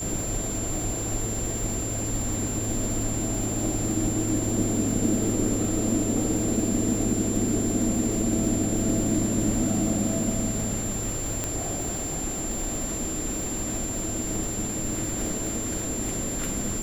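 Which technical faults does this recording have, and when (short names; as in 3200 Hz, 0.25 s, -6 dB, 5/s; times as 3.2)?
crackle 510/s -34 dBFS
tone 7300 Hz -31 dBFS
11.44 pop -12 dBFS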